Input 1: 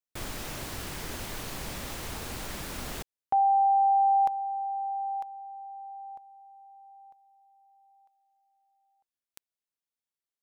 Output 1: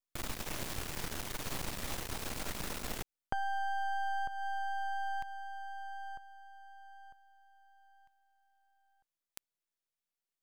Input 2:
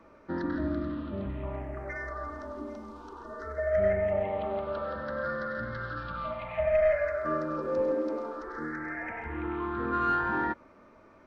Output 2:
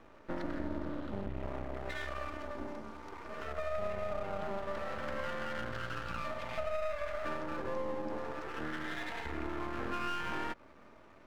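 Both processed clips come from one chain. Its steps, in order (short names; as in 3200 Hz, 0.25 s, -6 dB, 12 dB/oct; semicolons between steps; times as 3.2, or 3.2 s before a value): compressor 6:1, threshold -33 dBFS; half-wave rectifier; gain +2.5 dB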